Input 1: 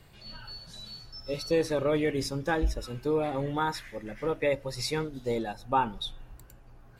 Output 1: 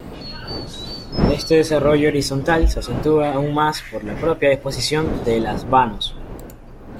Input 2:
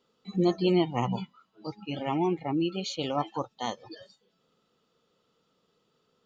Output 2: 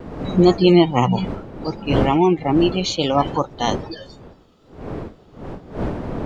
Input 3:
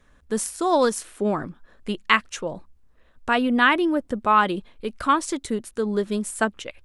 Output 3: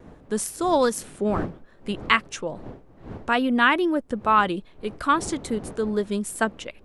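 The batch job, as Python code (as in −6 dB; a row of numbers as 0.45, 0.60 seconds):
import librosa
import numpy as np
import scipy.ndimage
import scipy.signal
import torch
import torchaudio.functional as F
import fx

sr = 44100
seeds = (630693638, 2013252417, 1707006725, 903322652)

y = fx.dmg_wind(x, sr, seeds[0], corner_hz=400.0, level_db=-40.0)
y = fx.vibrato(y, sr, rate_hz=2.4, depth_cents=47.0)
y = librosa.util.normalize(y) * 10.0 ** (-2 / 20.0)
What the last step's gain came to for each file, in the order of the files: +11.5, +11.5, −1.0 decibels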